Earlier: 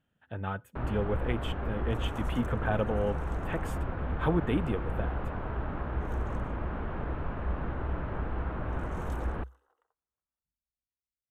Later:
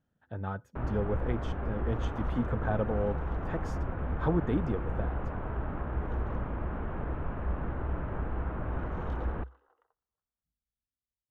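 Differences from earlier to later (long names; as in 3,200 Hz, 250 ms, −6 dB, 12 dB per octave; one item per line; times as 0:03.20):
speech: add high shelf with overshoot 4,100 Hz +13.5 dB, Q 3
second sound +5.5 dB
master: add high-frequency loss of the air 300 metres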